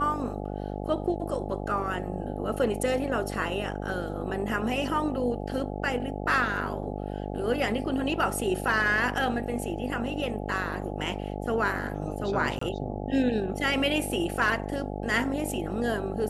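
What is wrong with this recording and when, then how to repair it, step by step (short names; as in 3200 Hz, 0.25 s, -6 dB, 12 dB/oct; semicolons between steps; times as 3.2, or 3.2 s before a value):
buzz 50 Hz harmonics 17 -34 dBFS
12.59–12.61 gap 24 ms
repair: de-hum 50 Hz, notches 17; interpolate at 12.59, 24 ms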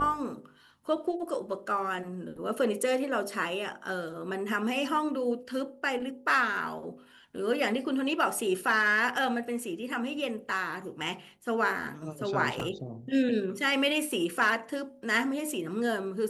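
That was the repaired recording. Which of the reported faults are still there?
none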